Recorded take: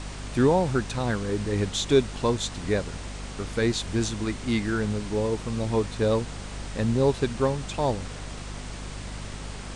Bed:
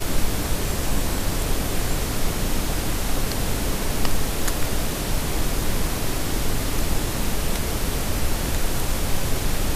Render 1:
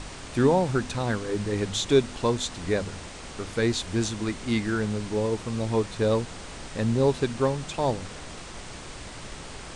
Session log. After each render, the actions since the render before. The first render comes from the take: de-hum 50 Hz, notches 5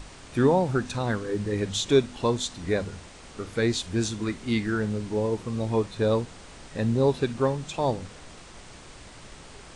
noise print and reduce 6 dB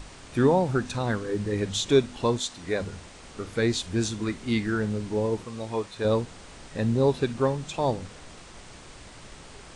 2.38–2.8 low shelf 230 Hz -9.5 dB; 5.44–6.05 low shelf 350 Hz -10.5 dB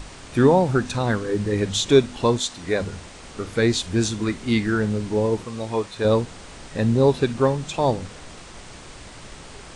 gain +5 dB

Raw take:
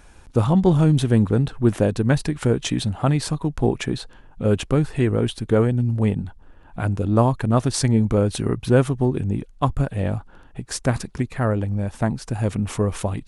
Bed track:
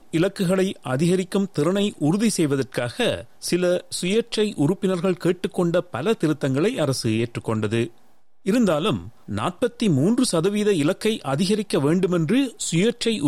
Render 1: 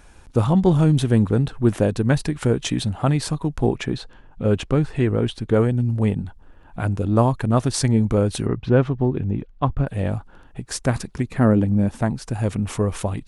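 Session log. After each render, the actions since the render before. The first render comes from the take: 3.75–5.54 air absorption 51 m; 8.46–9.87 air absorption 210 m; 11.29–12.02 bell 240 Hz +10.5 dB 1.3 oct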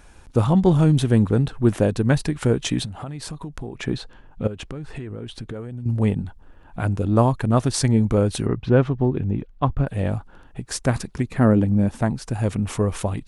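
2.85–3.83 compressor, threshold -29 dBFS; 4.47–5.86 compressor 12:1, threshold -28 dBFS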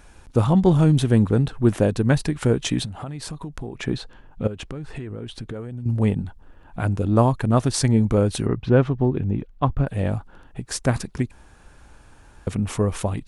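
11.31–12.47 room tone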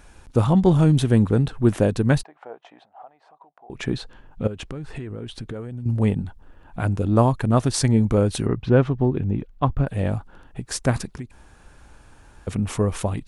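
2.23–3.7 ladder band-pass 810 Hz, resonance 65%; 11.15–12.48 compressor 2:1, threshold -37 dBFS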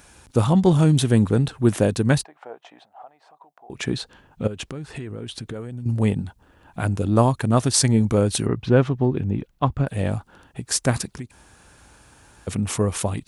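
HPF 66 Hz; high shelf 3700 Hz +8.5 dB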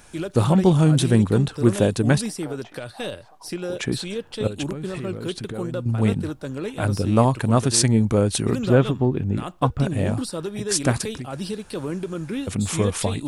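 add bed track -9 dB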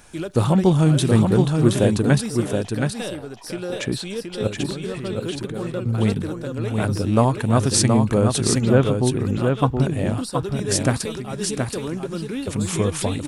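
echo 0.723 s -4.5 dB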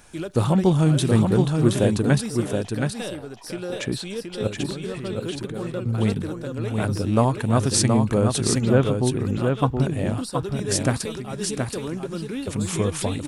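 gain -2 dB

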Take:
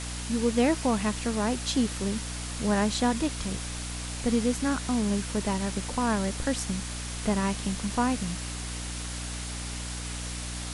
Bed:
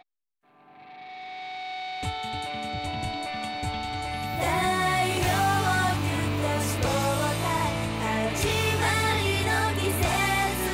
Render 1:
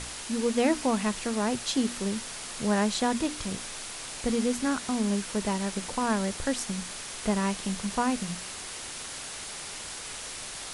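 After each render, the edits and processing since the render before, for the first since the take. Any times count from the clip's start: notches 60/120/180/240/300 Hz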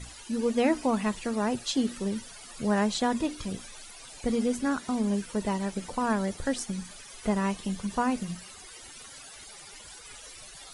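denoiser 15 dB, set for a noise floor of -39 dBFS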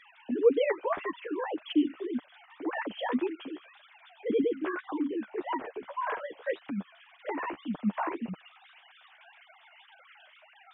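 sine-wave speech; flange 1.8 Hz, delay 5.9 ms, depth 9.2 ms, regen +14%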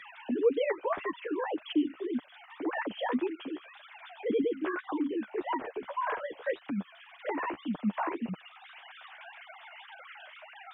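three-band squash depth 40%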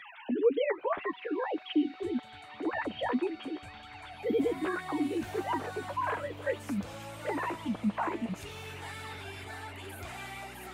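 add bed -19 dB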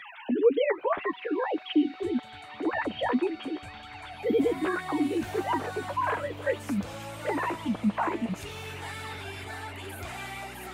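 gain +4 dB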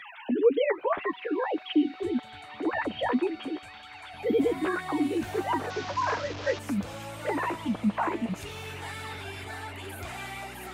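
3.59–4.14 low shelf 490 Hz -10.5 dB; 5.7–6.59 delta modulation 32 kbps, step -31.5 dBFS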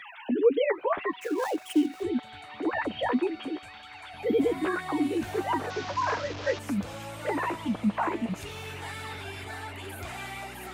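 1.21–2.03 switching dead time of 0.092 ms

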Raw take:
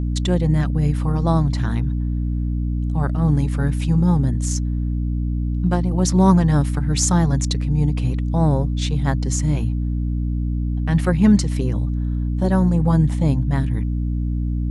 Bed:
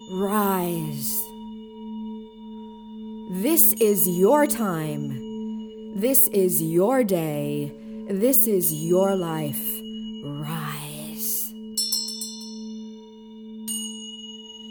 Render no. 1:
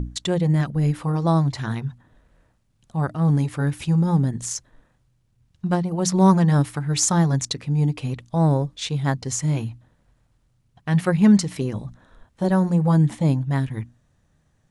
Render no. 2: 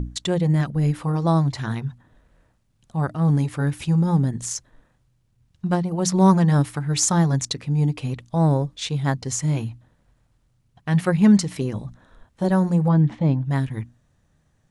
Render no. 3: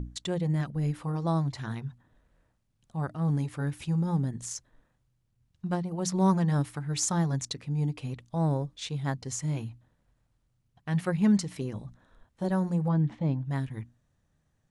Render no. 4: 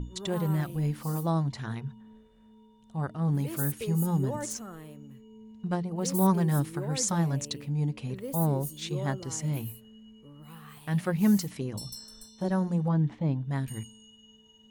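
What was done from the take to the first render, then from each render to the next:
notches 60/120/180/240/300 Hz
12.88–13.45 air absorption 210 m
gain -8.5 dB
add bed -18 dB

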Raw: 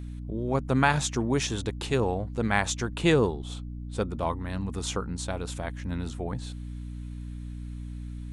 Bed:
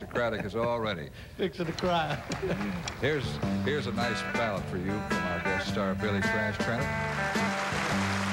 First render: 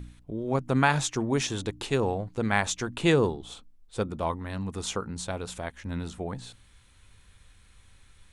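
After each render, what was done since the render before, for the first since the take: de-hum 60 Hz, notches 5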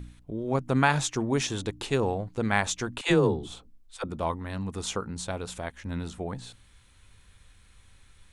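3.01–4.04 dispersion lows, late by 75 ms, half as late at 500 Hz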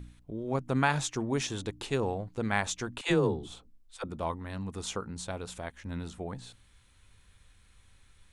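gain -4 dB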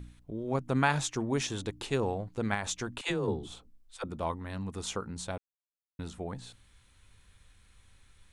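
2.54–3.28 compressor, threshold -27 dBFS; 5.38–5.99 mute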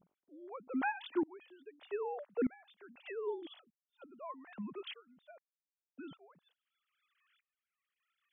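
sine-wave speech; dB-ramp tremolo swelling 0.81 Hz, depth 26 dB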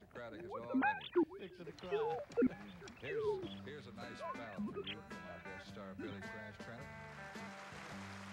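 add bed -21 dB

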